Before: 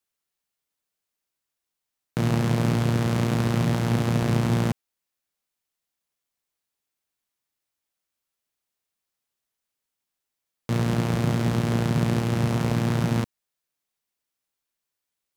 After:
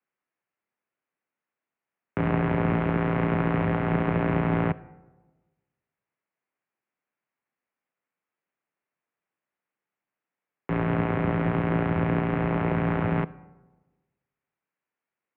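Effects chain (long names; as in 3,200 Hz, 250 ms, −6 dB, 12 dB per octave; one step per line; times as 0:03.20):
comb and all-pass reverb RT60 1.3 s, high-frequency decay 0.4×, pre-delay 5 ms, DRR 18 dB
single-sideband voice off tune −67 Hz 210–2,500 Hz
level +3 dB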